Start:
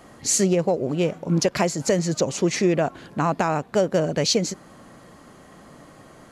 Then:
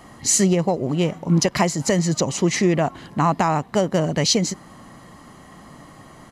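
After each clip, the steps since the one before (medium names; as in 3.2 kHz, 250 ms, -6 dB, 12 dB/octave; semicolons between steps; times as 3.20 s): comb 1 ms, depth 39%; trim +2.5 dB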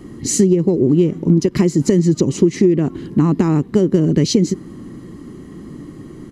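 resonant low shelf 500 Hz +11 dB, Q 3; compression 10:1, threshold -7 dBFS, peak gain reduction 10.5 dB; trim -2 dB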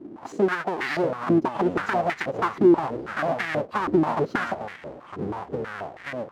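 square wave that keeps the level; ever faster or slower copies 442 ms, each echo -7 st, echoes 2, each echo -6 dB; step-sequenced band-pass 6.2 Hz 330–1900 Hz; trim -2 dB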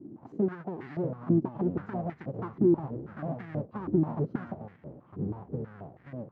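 band-pass filter 130 Hz, Q 1.3; trim +3 dB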